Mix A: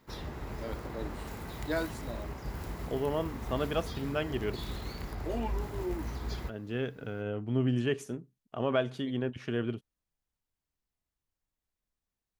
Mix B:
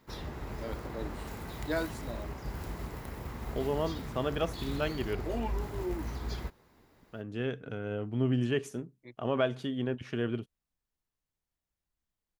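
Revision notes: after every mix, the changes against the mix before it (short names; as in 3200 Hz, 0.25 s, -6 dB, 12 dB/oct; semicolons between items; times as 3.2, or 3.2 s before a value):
second voice: entry +0.65 s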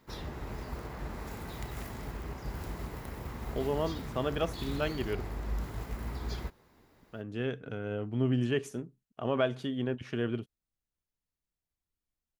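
first voice: muted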